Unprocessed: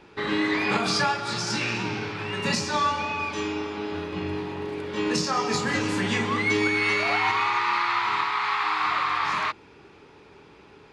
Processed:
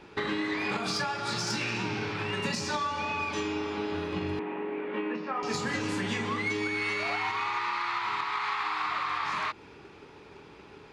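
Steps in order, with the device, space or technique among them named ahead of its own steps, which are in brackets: drum-bus smash (transient shaper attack +5 dB, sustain +1 dB; compressor 6:1, threshold -27 dBFS, peak gain reduction 9 dB; soft clip -20 dBFS, distortion -24 dB); 4.39–5.43 Chebyshev band-pass 220–2500 Hz, order 3

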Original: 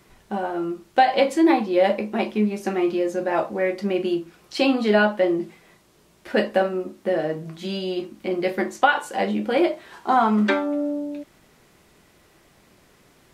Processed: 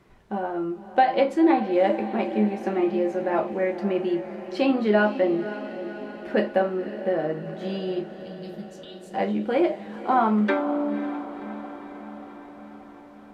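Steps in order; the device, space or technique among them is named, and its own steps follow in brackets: 8.15–9.14 elliptic band-stop 170–3600 Hz; through cloth (high shelf 3700 Hz -15 dB); diffused feedback echo 0.535 s, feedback 65%, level -12.5 dB; gain -1.5 dB

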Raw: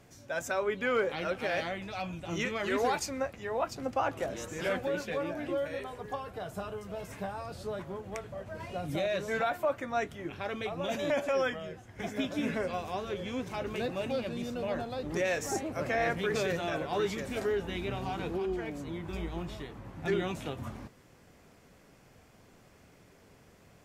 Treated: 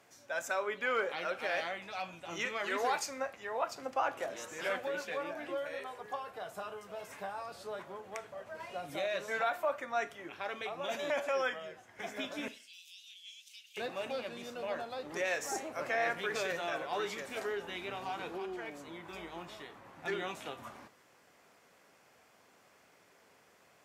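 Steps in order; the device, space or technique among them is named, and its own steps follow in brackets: filter by subtraction (in parallel: LPF 1000 Hz 12 dB/oct + phase invert); 12.48–13.77 on the sum: elliptic high-pass 2900 Hz, stop band 70 dB; Schroeder reverb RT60 0.35 s, combs from 27 ms, DRR 15 dB; gain -2.5 dB

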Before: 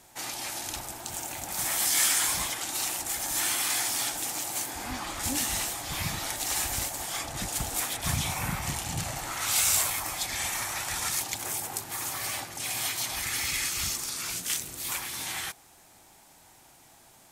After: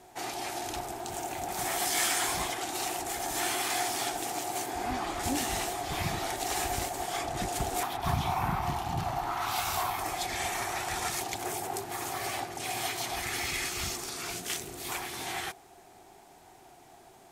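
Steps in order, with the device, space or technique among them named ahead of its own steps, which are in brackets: 7.83–9.99 graphic EQ 500/1000/2000/8000 Hz -8/+8/-5/-11 dB; inside a helmet (high shelf 4700 Hz -8 dB; small resonant body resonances 390/710 Hz, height 12 dB, ringing for 40 ms)

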